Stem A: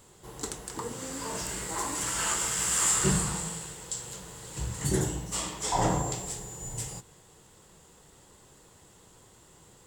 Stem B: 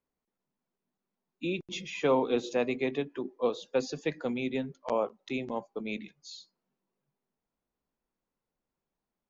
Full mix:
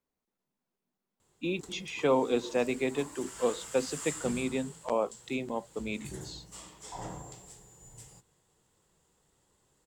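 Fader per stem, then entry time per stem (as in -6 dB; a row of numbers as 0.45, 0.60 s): -15.0, 0.0 dB; 1.20, 0.00 s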